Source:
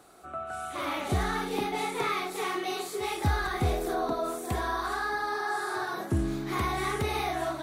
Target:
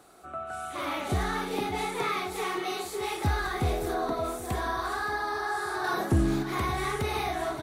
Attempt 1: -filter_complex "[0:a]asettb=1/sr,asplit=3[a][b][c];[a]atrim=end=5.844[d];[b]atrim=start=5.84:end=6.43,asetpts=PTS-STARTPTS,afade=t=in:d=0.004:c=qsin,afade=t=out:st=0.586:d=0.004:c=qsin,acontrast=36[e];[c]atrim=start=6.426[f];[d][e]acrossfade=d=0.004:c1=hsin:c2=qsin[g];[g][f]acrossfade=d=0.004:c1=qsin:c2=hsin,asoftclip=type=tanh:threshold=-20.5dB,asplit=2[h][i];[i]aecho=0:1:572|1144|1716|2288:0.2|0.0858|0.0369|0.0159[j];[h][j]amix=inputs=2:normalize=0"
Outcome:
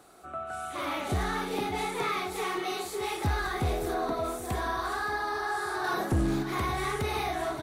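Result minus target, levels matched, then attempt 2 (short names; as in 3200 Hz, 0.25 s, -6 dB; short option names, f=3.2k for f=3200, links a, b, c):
soft clip: distortion +8 dB
-filter_complex "[0:a]asettb=1/sr,asplit=3[a][b][c];[a]atrim=end=5.844[d];[b]atrim=start=5.84:end=6.43,asetpts=PTS-STARTPTS,afade=t=in:d=0.004:c=qsin,afade=t=out:st=0.586:d=0.004:c=qsin,acontrast=36[e];[c]atrim=start=6.426[f];[d][e]acrossfade=d=0.004:c1=hsin:c2=qsin[g];[g][f]acrossfade=d=0.004:c1=qsin:c2=hsin,asoftclip=type=tanh:threshold=-14dB,asplit=2[h][i];[i]aecho=0:1:572|1144|1716|2288:0.2|0.0858|0.0369|0.0159[j];[h][j]amix=inputs=2:normalize=0"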